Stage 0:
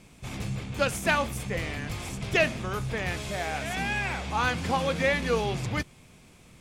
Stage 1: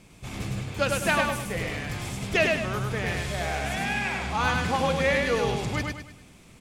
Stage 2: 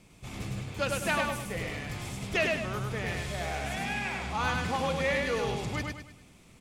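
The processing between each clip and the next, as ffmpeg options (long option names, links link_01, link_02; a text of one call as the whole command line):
ffmpeg -i in.wav -af "aecho=1:1:102|204|306|408|510:0.708|0.269|0.102|0.0388|0.0148" out.wav
ffmpeg -i in.wav -filter_complex "[0:a]bandreject=frequency=1600:width=24,acrossover=split=960[link_01][link_02];[link_01]volume=22dB,asoftclip=hard,volume=-22dB[link_03];[link_03][link_02]amix=inputs=2:normalize=0,volume=-4.5dB" out.wav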